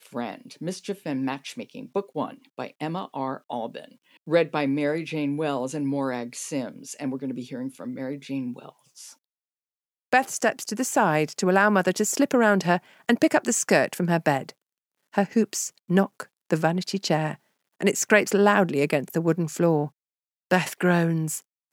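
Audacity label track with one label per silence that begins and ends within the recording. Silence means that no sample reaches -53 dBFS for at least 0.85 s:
9.150000	10.130000	silence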